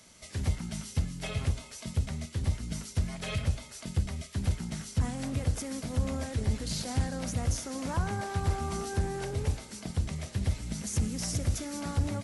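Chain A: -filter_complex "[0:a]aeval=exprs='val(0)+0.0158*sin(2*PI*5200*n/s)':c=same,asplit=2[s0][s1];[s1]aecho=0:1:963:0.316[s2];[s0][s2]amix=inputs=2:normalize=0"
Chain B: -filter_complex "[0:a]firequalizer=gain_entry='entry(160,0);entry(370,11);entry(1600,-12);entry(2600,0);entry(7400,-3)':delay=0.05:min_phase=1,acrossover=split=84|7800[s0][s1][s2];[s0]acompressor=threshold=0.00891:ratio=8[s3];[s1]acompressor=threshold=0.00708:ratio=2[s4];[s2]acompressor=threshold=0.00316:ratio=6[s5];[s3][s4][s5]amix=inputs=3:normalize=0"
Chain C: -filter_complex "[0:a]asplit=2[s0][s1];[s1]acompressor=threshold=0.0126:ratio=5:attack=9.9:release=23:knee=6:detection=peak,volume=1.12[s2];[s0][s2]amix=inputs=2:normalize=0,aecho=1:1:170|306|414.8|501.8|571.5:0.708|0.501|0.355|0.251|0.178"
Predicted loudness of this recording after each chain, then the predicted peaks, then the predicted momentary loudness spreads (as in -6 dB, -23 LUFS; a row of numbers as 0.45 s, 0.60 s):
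-32.0 LUFS, -39.5 LUFS, -26.5 LUFS; -17.0 dBFS, -24.0 dBFS, -12.5 dBFS; 3 LU, 4 LU, 3 LU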